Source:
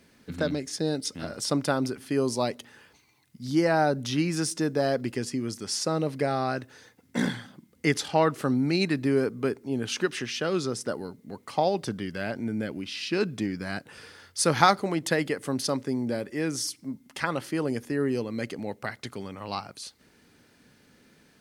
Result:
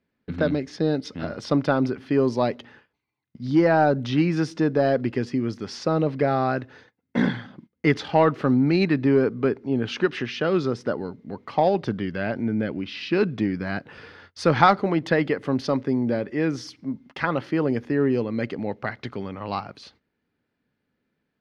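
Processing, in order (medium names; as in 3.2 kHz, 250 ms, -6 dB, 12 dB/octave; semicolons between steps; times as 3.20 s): gate -51 dBFS, range -22 dB; in parallel at -8 dB: hard clipper -19.5 dBFS, distortion -12 dB; on the sum: distance through air 260 m; trim +3 dB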